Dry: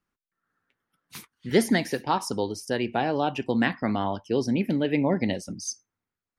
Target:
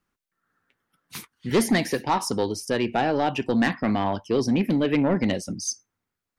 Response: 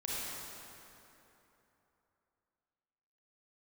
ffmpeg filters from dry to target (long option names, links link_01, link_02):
-af "asoftclip=type=tanh:threshold=-18.5dB,volume=4.5dB"